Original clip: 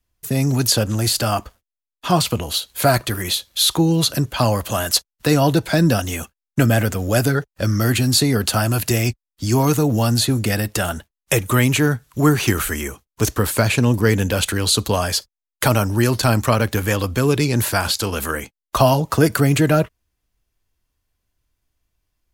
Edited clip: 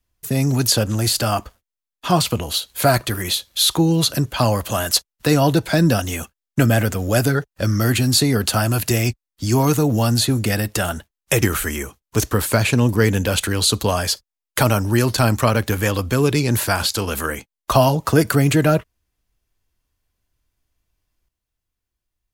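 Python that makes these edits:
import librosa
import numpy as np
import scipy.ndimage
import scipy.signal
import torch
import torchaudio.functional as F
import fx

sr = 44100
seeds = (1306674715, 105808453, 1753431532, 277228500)

y = fx.edit(x, sr, fx.cut(start_s=11.42, length_s=1.05), tone=tone)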